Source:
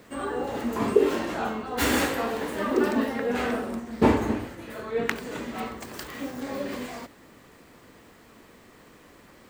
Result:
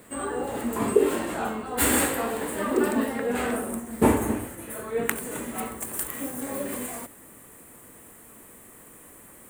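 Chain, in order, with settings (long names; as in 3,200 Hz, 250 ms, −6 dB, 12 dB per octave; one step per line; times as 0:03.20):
high shelf with overshoot 7,000 Hz +7 dB, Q 3, from 0:03.56 +13 dB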